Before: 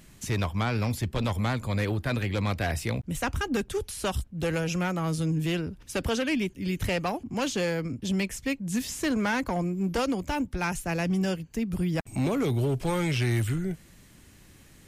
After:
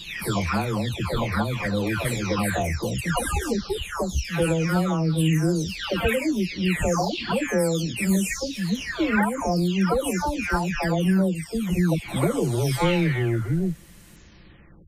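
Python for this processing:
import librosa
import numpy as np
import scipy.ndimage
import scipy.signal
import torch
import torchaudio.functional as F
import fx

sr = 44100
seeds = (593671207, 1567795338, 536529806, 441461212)

y = fx.spec_delay(x, sr, highs='early', ms=712)
y = F.gain(torch.from_numpy(y), 6.5).numpy()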